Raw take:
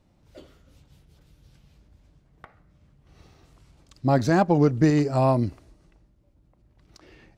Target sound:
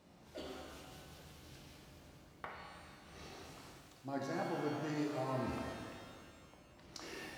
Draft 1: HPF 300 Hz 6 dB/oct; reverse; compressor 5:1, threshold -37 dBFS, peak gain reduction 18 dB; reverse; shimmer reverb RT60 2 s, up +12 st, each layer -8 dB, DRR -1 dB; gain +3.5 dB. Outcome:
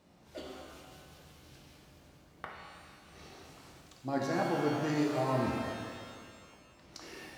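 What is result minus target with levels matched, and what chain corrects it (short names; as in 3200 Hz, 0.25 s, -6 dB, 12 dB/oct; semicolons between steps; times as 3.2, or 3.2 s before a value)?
compressor: peak gain reduction -7.5 dB
HPF 300 Hz 6 dB/oct; reverse; compressor 5:1, threshold -46.5 dBFS, peak gain reduction 25.5 dB; reverse; shimmer reverb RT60 2 s, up +12 st, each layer -8 dB, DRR -1 dB; gain +3.5 dB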